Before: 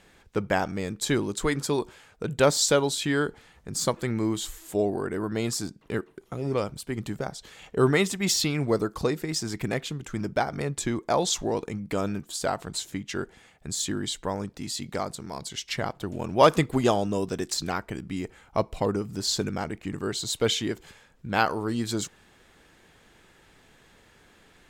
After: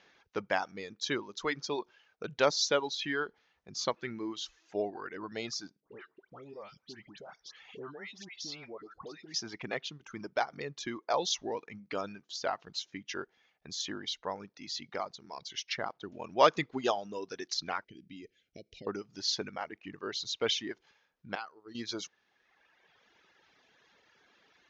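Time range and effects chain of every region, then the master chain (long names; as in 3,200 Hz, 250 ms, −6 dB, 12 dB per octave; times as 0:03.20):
0:05.80–0:09.34: high-shelf EQ 6,100 Hz −4 dB + downward compressor 2.5 to 1, threshold −38 dBFS + all-pass dispersion highs, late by 120 ms, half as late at 1,500 Hz
0:17.84–0:18.87: downward compressor, threshold −29 dBFS + Butterworth band-reject 1,000 Hz, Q 0.52
0:21.35–0:21.75: downward expander −21 dBFS + downward compressor 4 to 1, threshold −32 dBFS
whole clip: Butterworth low-pass 6,400 Hz 96 dB per octave; reverb reduction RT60 1.6 s; high-pass filter 570 Hz 6 dB per octave; level −3 dB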